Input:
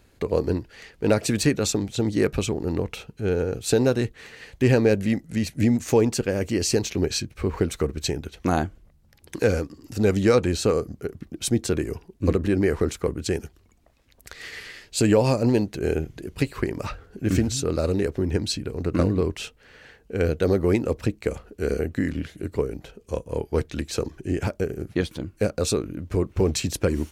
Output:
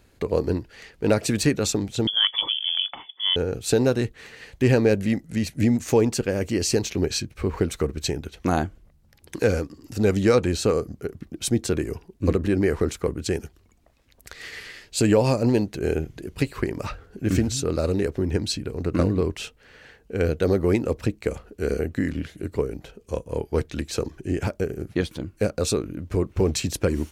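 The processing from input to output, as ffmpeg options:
-filter_complex "[0:a]asettb=1/sr,asplit=3[s0][s1][s2];[s0]atrim=end=2.074[s3];[s1]atrim=start=2.07:end=3.36,asetpts=PTS-STARTPTS,afade=t=in:d=0.004:c=qsin,afade=t=out:st=1.286:d=0.004:c=qsin,lowpass=f=3000:t=q:w=0.5098,lowpass=f=3000:t=q:w=0.6013,lowpass=f=3000:t=q:w=0.9,lowpass=f=3000:t=q:w=2.563,afreqshift=-3500[s4];[s2]atrim=start=3.356[s5];[s3][s4]acrossfade=d=0.004:c1=hsin:c2=qsin[s6];[s6][s5]acrossfade=d=0.004:c1=qsin:c2=hsin"

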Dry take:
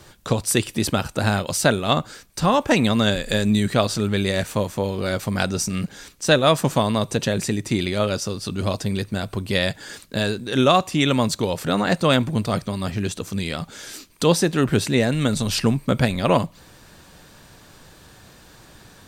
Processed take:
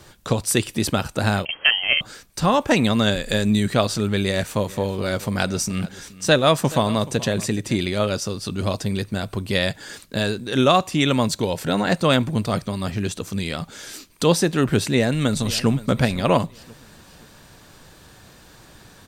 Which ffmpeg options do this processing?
-filter_complex "[0:a]asettb=1/sr,asplit=3[s0][s1][s2];[s0]atrim=end=1.454[s3];[s1]atrim=start=1.45:end=2.01,asetpts=PTS-STARTPTS,afade=t=in:d=0.004:c=qsin,afade=t=out:st=0.556:d=0.004:c=qsin,lowpass=f=2800:t=q:w=0.5098,lowpass=f=2800:t=q:w=0.6013,lowpass=f=2800:t=q:w=0.9,lowpass=f=2800:t=q:w=2.563,afreqshift=-3300[s4];[s2]atrim=start=2.006[s5];[s3][s4]acrossfade=d=0.004:c1=hsin:c2=qsin[s6];[s6][s5]acrossfade=d=0.004:c1=qsin:c2=hsin,asplit=3[s7][s8][s9];[s7]afade=t=out:st=4.67:d=0.02[s10];[s8]aecho=1:1:426:0.119,afade=t=in:st=4.67:d=0.02,afade=t=out:st=7.75:d=0.02[s11];[s9]afade=t=in:st=7.75:d=0.02[s12];[s10][s11][s12]amix=inputs=3:normalize=0,asettb=1/sr,asplit=3[s13][s14][s15];[s13]atrim=end=11.264[s16];[s14]atrim=start=11.26:end=11.89,asetpts=PTS-STARTPTS,afade=t=in:d=0.004:c=qsin,afade=t=out:st=0.626:d=0.004:c=qsin,asuperstop=centerf=1200:order=4:qfactor=7.7[s17];[s15]atrim=start=11.886[s18];[s16][s17]acrossfade=d=0.004:c1=hsin:c2=qsin[s19];[s19][s18]acrossfade=d=0.004:c1=qsin:c2=hsin,asplit=2[s20][s21];[s21]afade=t=in:st=14.89:d=0.01,afade=t=out:st=15.69:d=0.01,aecho=0:1:520|1040|1560:0.133352|0.0533409|0.0213363[s22];[s20][s22]amix=inputs=2:normalize=0"

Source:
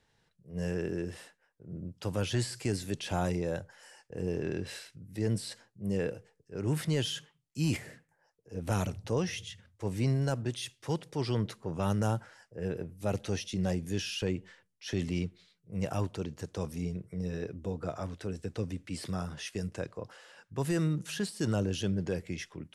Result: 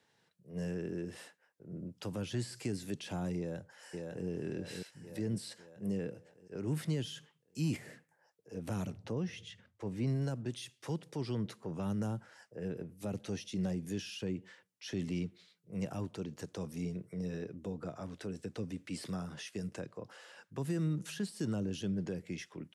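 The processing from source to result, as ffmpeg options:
-filter_complex "[0:a]asplit=2[s0][s1];[s1]afade=t=in:st=3.38:d=0.01,afade=t=out:st=4.27:d=0.01,aecho=0:1:550|1100|1650|2200|2750|3300:0.530884|0.265442|0.132721|0.0663606|0.0331803|0.0165901[s2];[s0][s2]amix=inputs=2:normalize=0,asettb=1/sr,asplit=3[s3][s4][s5];[s3]atrim=end=8.914[s6];[s4]atrim=start=8.91:end=10.07,asetpts=PTS-STARTPTS,afade=t=in:d=0.004:c=qsin,afade=t=out:st=1.156:d=0.004:c=qsin,lowpass=f=2900:p=1[s7];[s5]atrim=start=10.066[s8];[s6][s7]acrossfade=d=0.004:c1=hsin:c2=qsin[s9];[s9][s8]acrossfade=d=0.004:c1=qsin:c2=hsin,highpass=160,acrossover=split=290[s10][s11];[s11]acompressor=threshold=0.00631:ratio=4[s12];[s10][s12]amix=inputs=2:normalize=0"

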